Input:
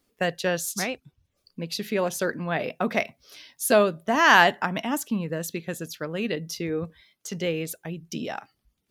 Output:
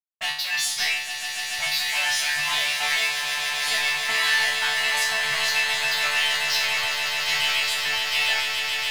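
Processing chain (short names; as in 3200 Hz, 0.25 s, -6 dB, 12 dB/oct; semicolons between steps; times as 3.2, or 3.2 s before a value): fuzz box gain 40 dB, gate -40 dBFS; HPF 45 Hz; reverb removal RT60 1.6 s; elliptic band-stop 110–720 Hz, stop band 40 dB; band shelf 3000 Hz +15 dB; low-pass opened by the level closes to 600 Hz, open at -8.5 dBFS; compressor, threshold -14 dBFS, peak gain reduction 12 dB; sample leveller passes 3; resonator bank D3 fifth, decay 0.51 s; swelling echo 0.143 s, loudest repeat 8, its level -10 dB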